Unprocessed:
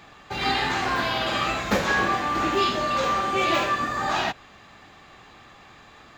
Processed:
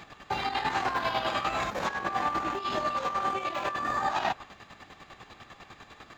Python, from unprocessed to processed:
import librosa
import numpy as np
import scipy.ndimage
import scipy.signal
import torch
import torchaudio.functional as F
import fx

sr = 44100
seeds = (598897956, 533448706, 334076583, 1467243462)

y = fx.chopper(x, sr, hz=10.0, depth_pct=60, duty_pct=35)
y = fx.over_compress(y, sr, threshold_db=-33.0, ratio=-1.0)
y = fx.dynamic_eq(y, sr, hz=900.0, q=1.1, threshold_db=-45.0, ratio=4.0, max_db=7)
y = F.gain(torch.from_numpy(y), -2.0).numpy()